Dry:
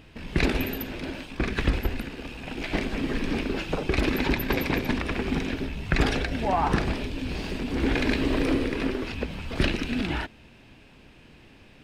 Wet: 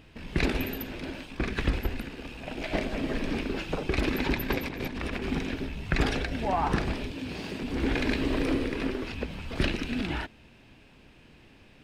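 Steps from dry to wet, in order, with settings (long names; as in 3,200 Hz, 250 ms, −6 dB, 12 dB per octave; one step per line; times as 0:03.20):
0:02.40–0:03.30: parametric band 620 Hz +8.5 dB 0.44 octaves
0:04.58–0:05.26: compressor whose output falls as the input rises −31 dBFS, ratio −1
0:07.11–0:07.63: high-pass filter 98 Hz 12 dB per octave
level −3 dB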